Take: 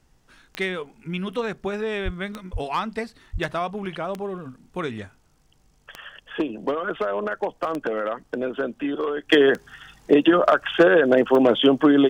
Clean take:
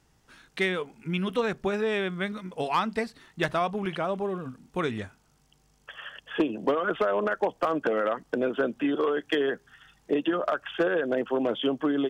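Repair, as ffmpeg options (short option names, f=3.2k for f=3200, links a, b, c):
-filter_complex "[0:a]adeclick=t=4,asplit=3[a][b][c];[a]afade=t=out:st=2.04:d=0.02[d];[b]highpass=f=140:w=0.5412,highpass=f=140:w=1.3066,afade=t=in:st=2.04:d=0.02,afade=t=out:st=2.16:d=0.02[e];[c]afade=t=in:st=2.16:d=0.02[f];[d][e][f]amix=inputs=3:normalize=0,asplit=3[g][h][i];[g]afade=t=out:st=2.52:d=0.02[j];[h]highpass=f=140:w=0.5412,highpass=f=140:w=1.3066,afade=t=in:st=2.52:d=0.02,afade=t=out:st=2.64:d=0.02[k];[i]afade=t=in:st=2.64:d=0.02[l];[j][k][l]amix=inputs=3:normalize=0,asplit=3[m][n][o];[m]afade=t=out:st=3.32:d=0.02[p];[n]highpass=f=140:w=0.5412,highpass=f=140:w=1.3066,afade=t=in:st=3.32:d=0.02,afade=t=out:st=3.44:d=0.02[q];[o]afade=t=in:st=3.44:d=0.02[r];[p][q][r]amix=inputs=3:normalize=0,agate=range=-21dB:threshold=-50dB,asetnsamples=n=441:p=0,asendcmd='9.29 volume volume -10dB',volume=0dB"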